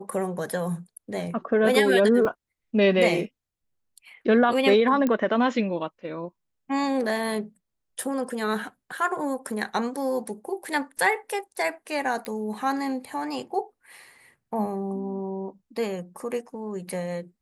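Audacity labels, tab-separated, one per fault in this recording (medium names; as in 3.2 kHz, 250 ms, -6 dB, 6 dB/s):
2.250000	2.250000	dropout 2.7 ms
5.070000	5.070000	pop -13 dBFS
12.250000	12.250000	pop -18 dBFS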